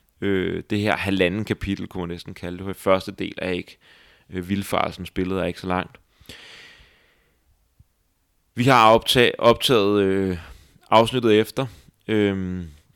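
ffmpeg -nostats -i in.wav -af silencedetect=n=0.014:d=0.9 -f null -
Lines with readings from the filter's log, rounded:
silence_start: 6.67
silence_end: 8.57 | silence_duration: 1.90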